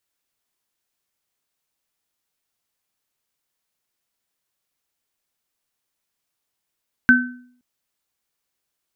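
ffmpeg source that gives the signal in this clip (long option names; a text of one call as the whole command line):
ffmpeg -f lavfi -i "aevalsrc='0.266*pow(10,-3*t/0.6)*sin(2*PI*247*t)+0.473*pow(10,-3*t/0.38)*sin(2*PI*1530*t)':duration=0.52:sample_rate=44100" out.wav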